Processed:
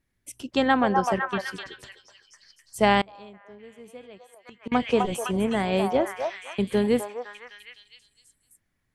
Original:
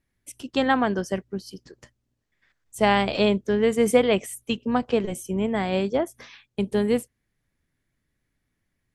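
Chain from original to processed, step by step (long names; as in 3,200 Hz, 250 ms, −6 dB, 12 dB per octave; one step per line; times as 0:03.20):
on a send: echo through a band-pass that steps 254 ms, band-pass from 870 Hz, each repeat 0.7 octaves, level 0 dB
0:03.01–0:04.72: on the sum: gate with flip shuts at −19 dBFS, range −26 dB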